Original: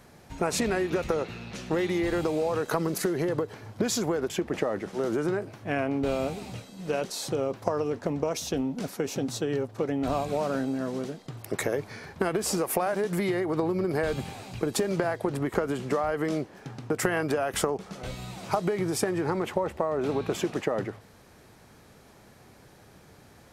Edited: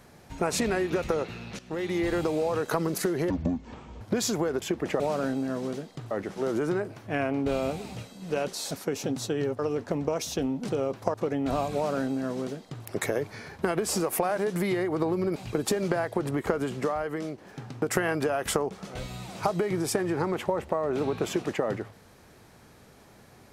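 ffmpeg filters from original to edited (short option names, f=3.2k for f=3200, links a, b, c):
-filter_complex "[0:a]asplit=12[a][b][c][d][e][f][g][h][i][j][k][l];[a]atrim=end=1.59,asetpts=PTS-STARTPTS,afade=t=out:st=1.586:d=0.004:c=hsin:silence=0.188365[m];[b]atrim=start=1.59:end=3.304,asetpts=PTS-STARTPTS,afade=t=in:d=0.42:silence=0.188365[n];[c]atrim=start=3.3:end=3.69,asetpts=PTS-STARTPTS,asetrate=24255,aresample=44100[o];[d]atrim=start=3.686:end=4.682[p];[e]atrim=start=10.308:end=11.422[q];[f]atrim=start=4.678:end=7.282[r];[g]atrim=start=8.828:end=9.712[s];[h]atrim=start=7.738:end=8.832[t];[i]atrim=start=7.278:end=7.742[u];[j]atrim=start=9.708:end=13.932[v];[k]atrim=start=14.438:end=16.46,asetpts=PTS-STARTPTS,afade=t=out:st=1.352:d=0.67:silence=0.421697[w];[l]atrim=start=16.46,asetpts=PTS-STARTPTS,afade=t=in:d=0.004:c=hsin:silence=0.421697[x];[m][n]concat=n=2:v=0:a=1[y];[y][o]acrossfade=d=0.004:c1=hsin:c2=hsin[z];[z][p]acrossfade=d=0.004:c1=hsin:c2=hsin[aa];[aa][q]acrossfade=d=0.004:c1=hsin:c2=hsin[ab];[ab][r]acrossfade=d=0.004:c1=hsin:c2=hsin[ac];[ac][s]acrossfade=d=0.004:c1=hsin:c2=hsin[ad];[ad][t]acrossfade=d=0.004:c1=hsin:c2=hsin[ae];[ae][u]acrossfade=d=0.004:c1=hsin:c2=hsin[af];[af][v]acrossfade=d=0.004:c1=hsin:c2=hsin[ag];[w][x]concat=n=2:v=0:a=1[ah];[ag][ah]acrossfade=d=0.004:c1=hsin:c2=hsin"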